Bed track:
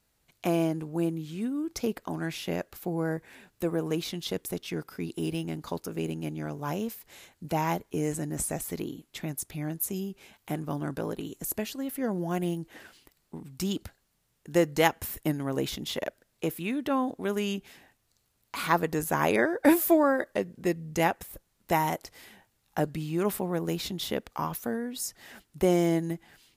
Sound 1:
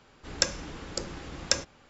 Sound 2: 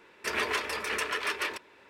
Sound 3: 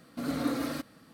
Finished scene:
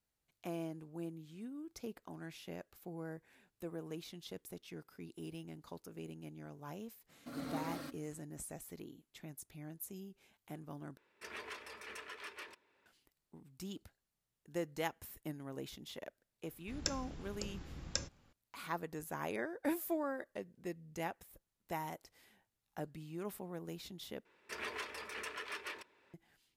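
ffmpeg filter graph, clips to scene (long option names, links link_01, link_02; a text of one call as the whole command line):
ffmpeg -i bed.wav -i cue0.wav -i cue1.wav -i cue2.wav -filter_complex "[2:a]asplit=2[link_01][link_02];[0:a]volume=-15.5dB[link_03];[3:a]bandreject=frequency=60:width_type=h:width=6,bandreject=frequency=120:width_type=h:width=6,bandreject=frequency=180:width_type=h:width=6,bandreject=frequency=240:width_type=h:width=6,bandreject=frequency=300:width_type=h:width=6,bandreject=frequency=360:width_type=h:width=6,bandreject=frequency=420:width_type=h:width=6,bandreject=frequency=480:width_type=h:width=6,bandreject=frequency=540:width_type=h:width=6[link_04];[1:a]bass=frequency=250:gain=10,treble=frequency=4000:gain=3[link_05];[link_03]asplit=3[link_06][link_07][link_08];[link_06]atrim=end=10.974[link_09];[link_01]atrim=end=1.89,asetpts=PTS-STARTPTS,volume=-17.5dB[link_10];[link_07]atrim=start=12.856:end=24.254[link_11];[link_02]atrim=end=1.89,asetpts=PTS-STARTPTS,volume=-13dB[link_12];[link_08]atrim=start=26.136[link_13];[link_04]atrim=end=1.13,asetpts=PTS-STARTPTS,volume=-10.5dB,afade=type=in:duration=0.004:curve=hsin,afade=type=out:start_time=1.126:duration=0.004:curve=hsin,adelay=7090[link_14];[link_05]atrim=end=1.89,asetpts=PTS-STARTPTS,volume=-14.5dB,afade=type=in:duration=0.004:curve=hsin,afade=type=out:start_time=1.886:duration=0.004:curve=hsin,adelay=16440[link_15];[link_09][link_10]acrossfade=duration=0.004:curve1=hsin:curve2=hsin[link_16];[link_16][link_11]acrossfade=duration=0.004:curve1=hsin:curve2=hsin[link_17];[link_17][link_12]acrossfade=duration=0.004:curve1=hsin:curve2=hsin[link_18];[link_18][link_13]acrossfade=duration=0.004:curve1=hsin:curve2=hsin[link_19];[link_19][link_14][link_15]amix=inputs=3:normalize=0" out.wav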